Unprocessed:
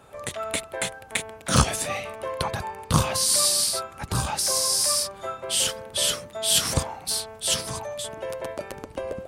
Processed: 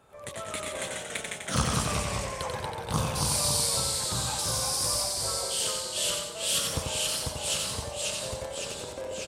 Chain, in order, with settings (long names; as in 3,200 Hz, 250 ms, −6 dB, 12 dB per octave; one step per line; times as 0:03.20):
delay with pitch and tempo change per echo 92 ms, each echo −1 semitone, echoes 3
repeating echo 90 ms, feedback 43%, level −4.5 dB
level −8.5 dB